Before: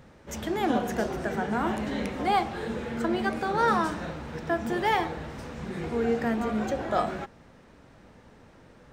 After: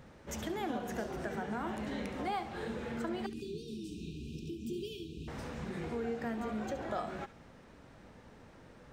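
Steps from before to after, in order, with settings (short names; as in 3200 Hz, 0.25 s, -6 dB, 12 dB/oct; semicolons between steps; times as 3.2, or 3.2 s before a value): compressor 2.5:1, threshold -35 dBFS, peak gain reduction 10.5 dB; 3.26–5.28 brick-wall FIR band-stop 450–2400 Hz; thin delay 70 ms, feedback 36%, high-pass 1800 Hz, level -12 dB; gain -2.5 dB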